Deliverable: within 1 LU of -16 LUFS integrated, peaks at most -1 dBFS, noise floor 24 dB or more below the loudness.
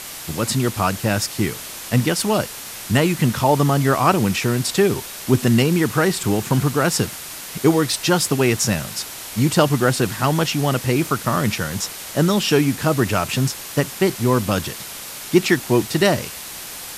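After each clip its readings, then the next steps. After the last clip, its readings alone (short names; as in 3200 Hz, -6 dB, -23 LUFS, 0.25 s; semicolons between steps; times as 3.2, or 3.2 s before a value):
noise floor -34 dBFS; noise floor target -44 dBFS; loudness -19.5 LUFS; peak -2.5 dBFS; loudness target -16.0 LUFS
-> denoiser 10 dB, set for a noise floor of -34 dBFS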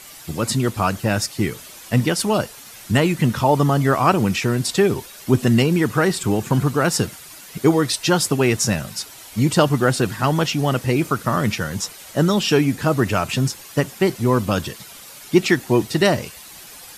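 noise floor -41 dBFS; noise floor target -44 dBFS
-> denoiser 6 dB, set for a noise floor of -41 dBFS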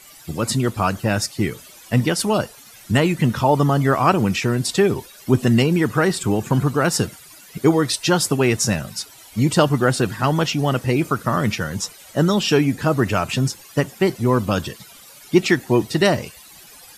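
noise floor -45 dBFS; loudness -19.5 LUFS; peak -2.5 dBFS; loudness target -16.0 LUFS
-> gain +3.5 dB; limiter -1 dBFS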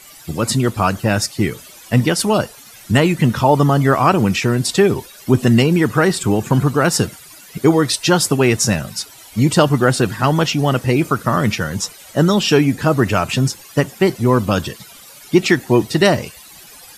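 loudness -16.5 LUFS; peak -1.0 dBFS; noise floor -41 dBFS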